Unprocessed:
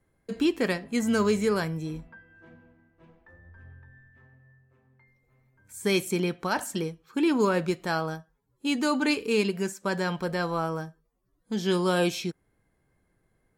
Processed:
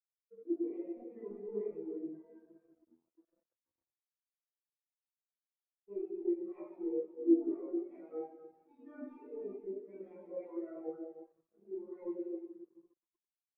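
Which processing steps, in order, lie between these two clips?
self-modulated delay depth 0.43 ms; reverse; compression 6:1, threshold -40 dBFS, peak gain reduction 18.5 dB; reverse; cabinet simulation 350–3300 Hz, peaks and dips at 370 Hz +5 dB, 720 Hz +3 dB, 1.6 kHz -8 dB, 3 kHz -8 dB; gain riding within 3 dB 0.5 s; saturation -35.5 dBFS, distortion -19 dB; doubling 15 ms -4 dB; feedback delay 368 ms, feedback 24%, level -13 dB; reverberation RT60 2.8 s, pre-delay 3 ms, DRR -16.5 dB; small samples zeroed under -33.5 dBFS; spectral contrast expander 2.5:1; trim -3.5 dB

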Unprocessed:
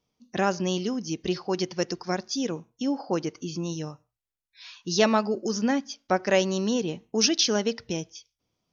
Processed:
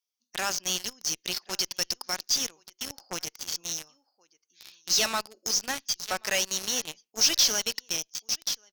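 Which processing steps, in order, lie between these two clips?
differentiator; Chebyshev shaper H 6 -26 dB, 8 -25 dB, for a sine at -9.5 dBFS; delay 1079 ms -15.5 dB; in parallel at -6 dB: fuzz box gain 45 dB, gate -42 dBFS; on the sum: trim -3 dB

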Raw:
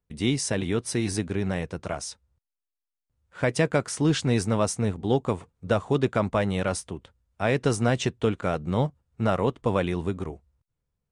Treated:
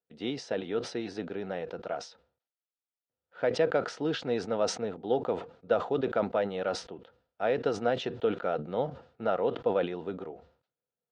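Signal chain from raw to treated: cabinet simulation 250–4300 Hz, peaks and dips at 490 Hz +8 dB, 710 Hz +6 dB, 1.3 kHz +5 dB, 2.2 kHz -5 dB; band-stop 1.1 kHz, Q 5.3; decay stretcher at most 130 dB/s; trim -7.5 dB

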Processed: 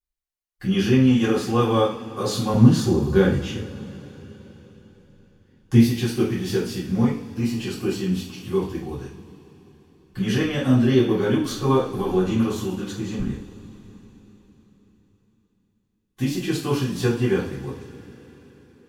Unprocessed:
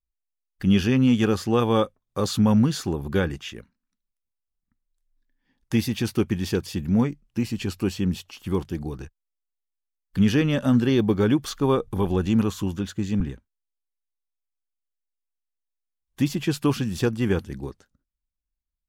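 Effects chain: 2.54–5.79 s: bass shelf 360 Hz +9.5 dB; two-slope reverb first 0.43 s, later 4.4 s, from -22 dB, DRR -9 dB; trim -8 dB

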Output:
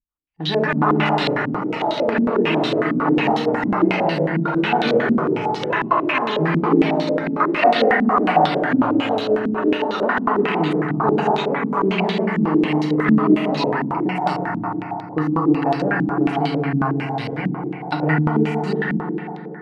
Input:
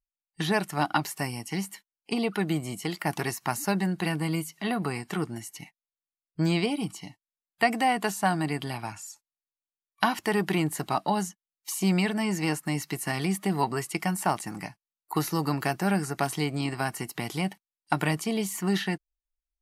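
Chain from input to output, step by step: FDN reverb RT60 3.7 s, high-frequency decay 0.25×, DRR -3 dB; ever faster or slower copies 310 ms, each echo +6 st, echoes 3; step-sequenced low-pass 11 Hz 240–3900 Hz; trim -1 dB

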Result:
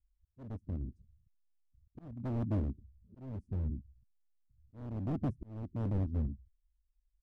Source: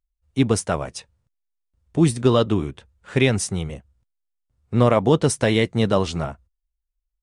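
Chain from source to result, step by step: coarse spectral quantiser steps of 30 dB; inverse Chebyshev low-pass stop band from 740 Hz, stop band 60 dB; comb 3.1 ms, depth 59%; hard clipper -28.5 dBFS, distortion -7 dB; slow attack 549 ms

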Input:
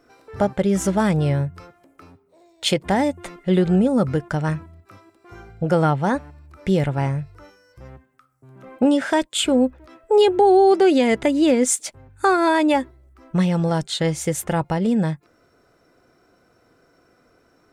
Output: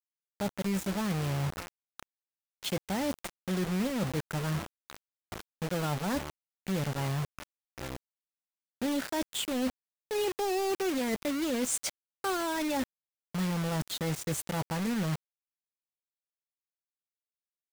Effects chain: peaking EQ 200 Hz +4.5 dB 0.66 oct; reverse; compression 5:1, threshold -31 dBFS, peak gain reduction 18.5 dB; reverse; bit crusher 6-bit

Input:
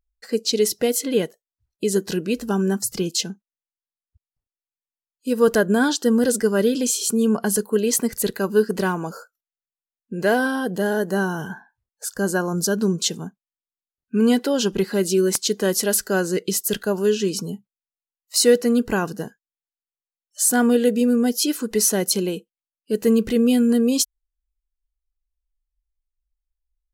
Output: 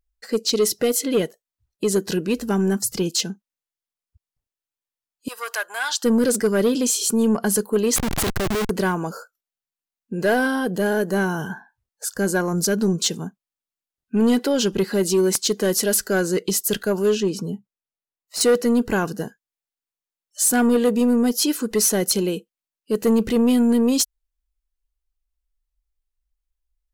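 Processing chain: saturation -13 dBFS, distortion -16 dB; 5.28–6.04 s: high-pass 840 Hz 24 dB/octave; 7.96–8.70 s: Schmitt trigger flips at -29 dBFS; 17.20–18.41 s: treble shelf 2.6 kHz -10 dB; trim +2 dB

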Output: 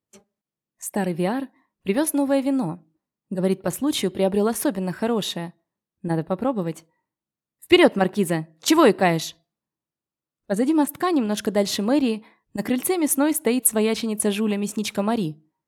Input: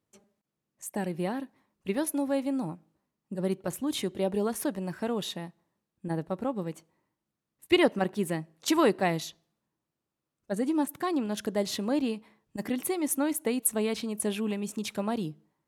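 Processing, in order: spectral noise reduction 14 dB; trim +8 dB

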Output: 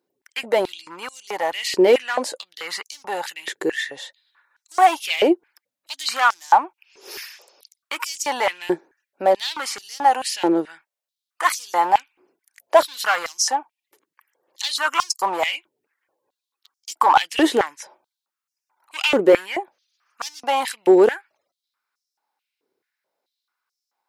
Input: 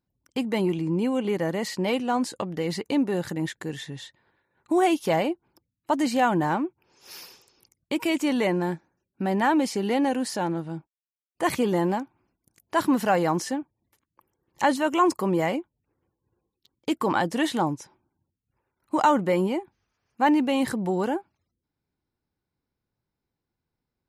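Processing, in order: overload inside the chain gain 19 dB; step-sequenced high-pass 4.6 Hz 400–5600 Hz; trim +6 dB

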